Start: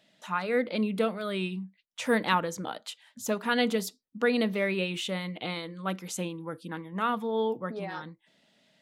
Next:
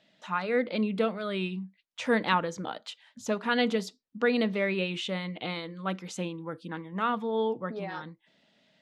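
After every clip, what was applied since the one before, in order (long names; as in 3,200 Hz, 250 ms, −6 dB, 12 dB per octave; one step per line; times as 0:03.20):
low-pass filter 5,500 Hz 12 dB per octave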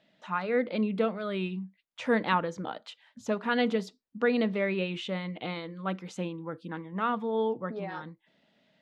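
high-shelf EQ 3,800 Hz −9.5 dB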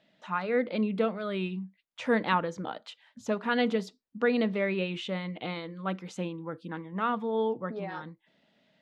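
no processing that can be heard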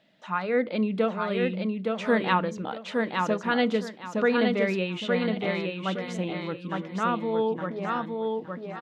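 repeating echo 865 ms, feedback 25%, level −3.5 dB
level +2.5 dB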